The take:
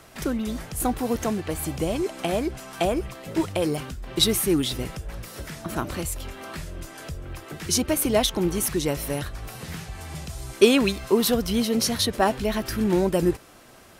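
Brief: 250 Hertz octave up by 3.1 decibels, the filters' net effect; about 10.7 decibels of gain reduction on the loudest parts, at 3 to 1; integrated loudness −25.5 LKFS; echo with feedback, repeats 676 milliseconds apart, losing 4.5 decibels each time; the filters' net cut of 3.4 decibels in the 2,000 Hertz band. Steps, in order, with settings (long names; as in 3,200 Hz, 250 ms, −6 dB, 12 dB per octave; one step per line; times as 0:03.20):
parametric band 250 Hz +4 dB
parametric band 2,000 Hz −4.5 dB
downward compressor 3 to 1, threshold −24 dBFS
repeating echo 676 ms, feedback 60%, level −4.5 dB
level +2 dB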